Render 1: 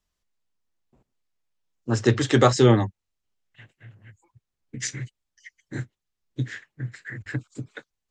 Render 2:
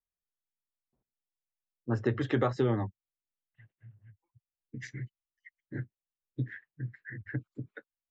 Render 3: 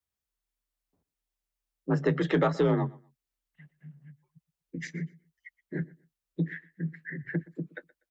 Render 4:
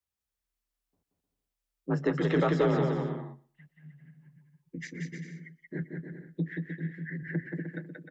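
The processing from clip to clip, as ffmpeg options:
-af "afftdn=nr=14:nf=-39,lowpass=2.3k,acompressor=threshold=-18dB:ratio=6,volume=-5.5dB"
-af "afreqshift=38,aecho=1:1:122|244:0.075|0.0165,asoftclip=type=tanh:threshold=-18.5dB,volume=4.5dB"
-af "aecho=1:1:180|306|394.2|455.9|499.2:0.631|0.398|0.251|0.158|0.1,volume=-2.5dB"

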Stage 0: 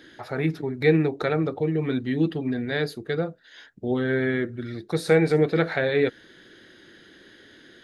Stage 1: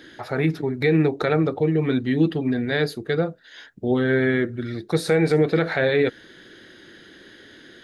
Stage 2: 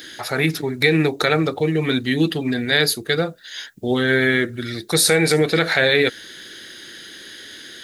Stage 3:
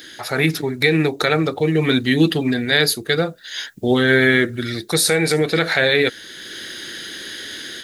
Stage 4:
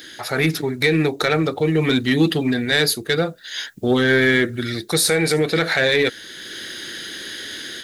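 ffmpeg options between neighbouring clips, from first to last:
-af "alimiter=level_in=12.5dB:limit=-1dB:release=50:level=0:latency=1,volume=-8.5dB"
-af "crystalizer=i=8:c=0"
-af "dynaudnorm=f=200:g=3:m=8dB,volume=-1.5dB"
-af "asoftclip=type=tanh:threshold=-7dB"

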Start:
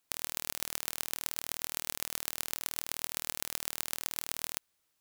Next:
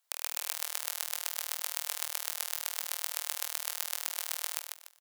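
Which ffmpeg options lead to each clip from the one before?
-filter_complex "[0:a]highpass=f=560:w=0.5412,highpass=f=560:w=1.3066,bandreject=f=2.5k:w=14,asplit=2[a][b];[b]aecho=0:1:147|294|441|588:0.596|0.185|0.0572|0.0177[c];[a][c]amix=inputs=2:normalize=0"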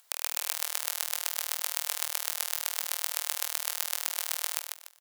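-af "acompressor=mode=upward:threshold=-57dB:ratio=2.5,volume=3.5dB"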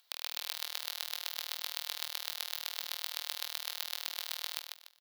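-af "equalizer=f=250:t=o:w=1:g=5,equalizer=f=4k:t=o:w=1:g=12,equalizer=f=8k:t=o:w=1:g=-10,volume=-8dB"

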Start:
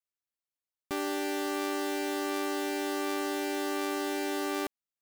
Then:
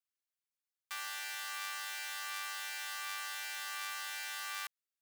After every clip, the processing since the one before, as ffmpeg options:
-af "highpass=f=1.2k:w=0.5412,highpass=f=1.2k:w=1.3066,volume=-2dB"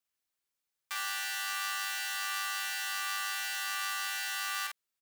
-filter_complex "[0:a]asplit=2[a][b];[b]adelay=47,volume=-3.5dB[c];[a][c]amix=inputs=2:normalize=0,volume=4.5dB"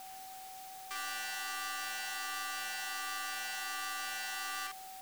-af "aeval=exprs='val(0)+0.5*0.0119*sgn(val(0))':c=same,aeval=exprs='val(0)+0.00891*sin(2*PI*760*n/s)':c=same,aeval=exprs='0.15*(cos(1*acos(clip(val(0)/0.15,-1,1)))-cos(1*PI/2))+0.00422*(cos(8*acos(clip(val(0)/0.15,-1,1)))-cos(8*PI/2))':c=same,volume=-6.5dB"

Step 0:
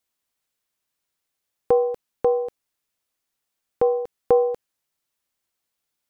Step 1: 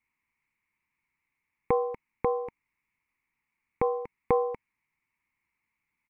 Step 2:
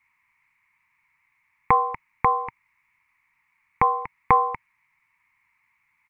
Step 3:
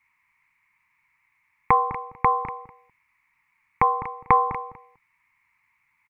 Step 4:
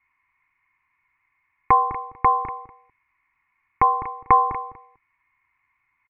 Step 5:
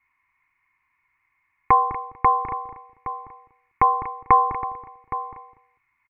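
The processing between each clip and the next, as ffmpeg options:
-af "firequalizer=gain_entry='entry(220,0);entry(640,-19);entry(930,3);entry(1500,-9);entry(2200,11);entry(3200,-18)':delay=0.05:min_phase=1,acontrast=86,volume=-3.5dB"
-af "equalizer=f=125:t=o:w=1:g=4,equalizer=f=250:t=o:w=1:g=-4,equalizer=f=500:t=o:w=1:g=-11,equalizer=f=1k:t=o:w=1:g=11,equalizer=f=2k:t=o:w=1:g=9,volume=5dB"
-filter_complex "[0:a]asplit=2[a][b];[b]adelay=205,lowpass=f=980:p=1,volume=-9.5dB,asplit=2[c][d];[d]adelay=205,lowpass=f=980:p=1,volume=0.17[e];[a][c][e]amix=inputs=3:normalize=0"
-af "lowpass=2k,aecho=1:1:2.8:0.51"
-filter_complex "[0:a]asplit=2[a][b];[b]adelay=816.3,volume=-12dB,highshelf=f=4k:g=-18.4[c];[a][c]amix=inputs=2:normalize=0"

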